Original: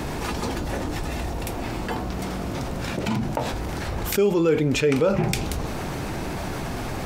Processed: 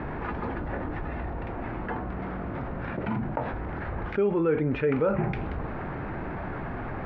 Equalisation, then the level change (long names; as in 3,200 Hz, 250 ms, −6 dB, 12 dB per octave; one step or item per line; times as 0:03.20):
low-pass with resonance 1,700 Hz, resonance Q 1.6
high-frequency loss of the air 220 metres
−4.5 dB